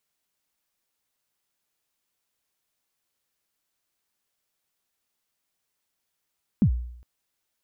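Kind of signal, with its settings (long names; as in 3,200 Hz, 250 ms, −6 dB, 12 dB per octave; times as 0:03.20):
synth kick length 0.41 s, from 250 Hz, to 60 Hz, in 84 ms, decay 0.70 s, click off, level −13 dB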